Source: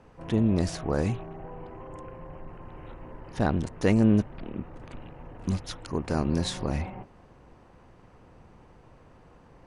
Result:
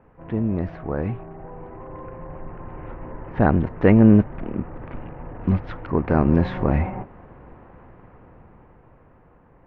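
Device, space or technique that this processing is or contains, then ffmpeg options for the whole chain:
action camera in a waterproof case: -af "lowpass=frequency=2200:width=0.5412,lowpass=frequency=2200:width=1.3066,dynaudnorm=framelen=440:gausssize=9:maxgain=11dB" -ar 24000 -c:a aac -b:a 64k

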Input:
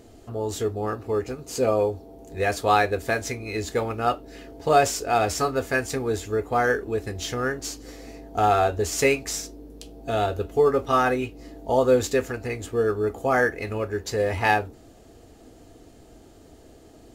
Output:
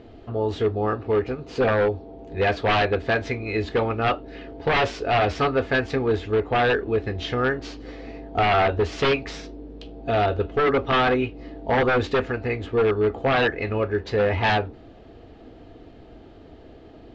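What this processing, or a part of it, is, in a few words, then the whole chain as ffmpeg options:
synthesiser wavefolder: -af "aeval=exprs='0.126*(abs(mod(val(0)/0.126+3,4)-2)-1)':channel_layout=same,lowpass=frequency=3700:width=0.5412,lowpass=frequency=3700:width=1.3066,volume=4dB"

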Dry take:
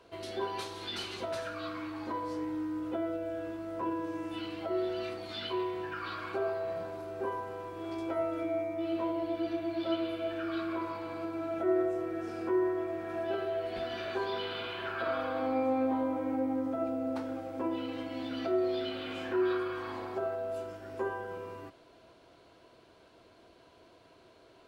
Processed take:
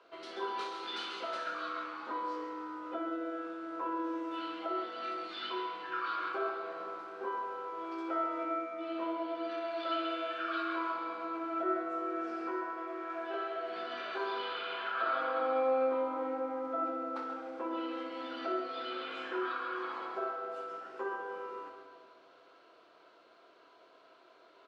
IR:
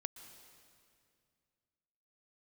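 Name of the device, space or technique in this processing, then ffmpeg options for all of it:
station announcement: -filter_complex "[0:a]asettb=1/sr,asplit=3[link_01][link_02][link_03];[link_01]atrim=end=9.494[link_04];[link_02]atrim=start=9.49:end=10.92,asetpts=PTS-STARTPTS,afade=type=in:duration=0.004:curve=qsin,afade=type=out:start_time=1.426:duration=0.004:curve=qsin,tiltshelf=frequency=700:gain=-4[link_05];[link_03]atrim=start=10.916[link_06];[link_04][link_05]acrossfade=duration=0.004:curve1=hsin:curve2=qsin[link_07];[link_07][link_06]acrossfade=duration=0.004:curve1=qsin:curve2=hsin,asettb=1/sr,asplit=3[link_08][link_09][link_10];[link_08]atrim=end=12.474[link_11];[link_09]atrim=start=12.47:end=13.56,asetpts=PTS-STARTPTS,afade=type=in:duration=0.004:curve=qsin,afade=type=out:start_time=1.086:duration=0.004:curve=qsin,highpass=frequency=340:poles=1[link_12];[link_10]atrim=start=13.556[link_13];[link_11][link_12]acrossfade=duration=0.004:curve1=hsin:curve2=qsin[link_14];[link_14][link_13]acrossfade=duration=0.004:curve1=qsin:curve2=hsin,highpass=390,lowpass=5000,equalizer=frequency=1300:width_type=o:width=0.34:gain=9,aecho=1:1:61.22|134.1:0.355|0.355[link_15];[1:a]atrim=start_sample=2205[link_16];[link_15][link_16]afir=irnorm=-1:irlink=0,asplit=2[link_17][link_18];[link_18]adelay=25,volume=-10dB[link_19];[link_17][link_19]amix=inputs=2:normalize=0"

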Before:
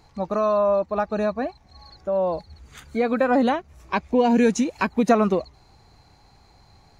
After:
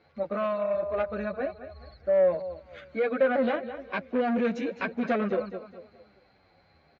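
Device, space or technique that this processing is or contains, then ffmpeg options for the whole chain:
barber-pole flanger into a guitar amplifier: -filter_complex "[0:a]asettb=1/sr,asplit=3[link_01][link_02][link_03];[link_01]atrim=end=0.744[link_04];[link_02]atrim=start=0.74:end=2.34,asetpts=PTS-STARTPTS,afade=type=in:duration=0.004:curve=qsin,afade=type=out:start_time=1.596:duration=0.004:curve=qsin,lowshelf=frequency=140:width_type=q:width=1.5:gain=12[link_05];[link_03]atrim=start=2.336[link_06];[link_04][link_05]acrossfade=duration=0.004:curve1=hsin:curve2=qsin[link_07];[link_07][link_06]acrossfade=duration=0.004:curve1=qsin:curve2=hsin,aecho=1:1:210|420|630|840:0.2|0.0758|0.0288|0.0109,asplit=2[link_08][link_09];[link_09]adelay=9.2,afreqshift=-1.2[link_10];[link_08][link_10]amix=inputs=2:normalize=1,asoftclip=type=tanh:threshold=-20dB,highpass=98,equalizer=frequency=120:width_type=q:width=4:gain=-9,equalizer=frequency=550:width_type=q:width=4:gain=9,equalizer=frequency=920:width_type=q:width=4:gain=-7,equalizer=frequency=1500:width_type=q:width=4:gain=6,equalizer=frequency=2200:width_type=q:width=4:gain=5,lowpass=frequency=3900:width=0.5412,lowpass=frequency=3900:width=1.3066,volume=-3dB"

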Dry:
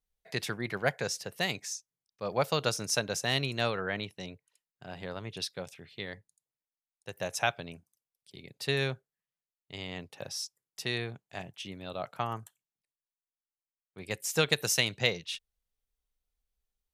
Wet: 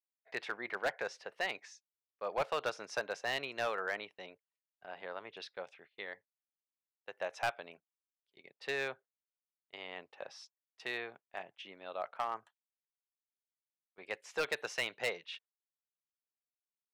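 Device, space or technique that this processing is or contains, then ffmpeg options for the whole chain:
walkie-talkie: -af "highpass=570,lowpass=2200,asoftclip=type=hard:threshold=-27dB,agate=range=-16dB:threshold=-57dB:ratio=16:detection=peak"

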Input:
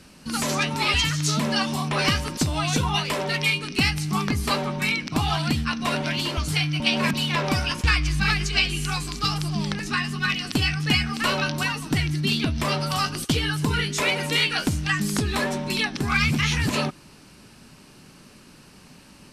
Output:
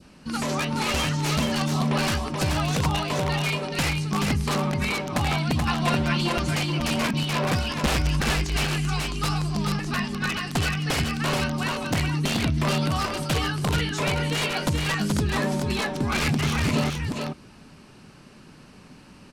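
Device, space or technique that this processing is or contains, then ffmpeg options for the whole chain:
overflowing digital effects unit: -filter_complex "[0:a]adynamicequalizer=threshold=0.0126:dfrequency=1800:dqfactor=1.2:tfrequency=1800:tqfactor=1.2:attack=5:release=100:ratio=0.375:range=2.5:mode=cutabove:tftype=bell,aeval=exprs='(mod(5.96*val(0)+1,2)-1)/5.96':channel_layout=same,lowpass=12000,asettb=1/sr,asplit=3[link_01][link_02][link_03];[link_01]atrim=end=5.674[link_04];[link_02]atrim=start=5.67:end=6.51,asetpts=PTS-STARTPTS,afade=type=in:duration=0.004:curve=qsin,afade=type=out:start_time=0.836:duration=0.004:curve=qsin,aecho=1:1:5.8:0.96,atrim=end_sample=37044[link_05];[link_03]atrim=start=6.506[link_06];[link_04][link_05]acrossfade=duration=0.004:curve1=hsin:curve2=qsin[link_07];[link_07][link_06]acrossfade=duration=0.004:curve1=qsin:curve2=hsin,highshelf=frequency=3700:gain=-8.5,aecho=1:1:429:0.631"

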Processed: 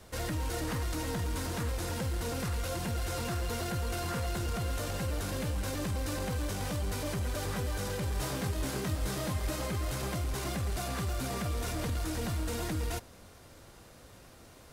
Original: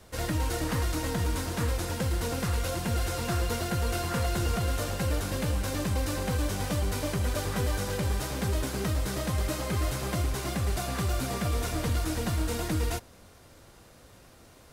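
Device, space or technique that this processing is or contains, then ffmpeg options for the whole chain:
soft clipper into limiter: -filter_complex "[0:a]asoftclip=type=tanh:threshold=-20.5dB,alimiter=level_in=3dB:limit=-24dB:level=0:latency=1:release=16,volume=-3dB,asettb=1/sr,asplit=3[link_01][link_02][link_03];[link_01]atrim=end=8.134[link_04];[link_02]atrim=start=8.13:end=9.51,asetpts=PTS-STARTPTS,afade=type=in:duration=0.004:curve=qsin,afade=type=out:start_time=1.376:duration=0.004:curve=qsin,asplit=2[link_05][link_06];[link_06]adelay=22,volume=-6dB[link_07];[link_05][link_07]amix=inputs=2:normalize=0,atrim=end_sample=60858[link_08];[link_03]atrim=start=9.506[link_09];[link_04][link_08]acrossfade=duration=0.004:curve1=hsin:curve2=qsin[link_10];[link_10][link_09]acrossfade=duration=0.004:curve1=qsin:curve2=hsin"

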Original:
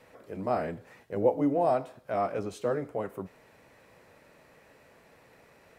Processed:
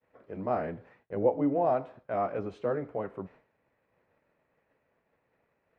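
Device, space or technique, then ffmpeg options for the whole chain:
hearing-loss simulation: -af "lowpass=2400,agate=range=-33dB:threshold=-48dB:ratio=3:detection=peak,volume=-1dB"

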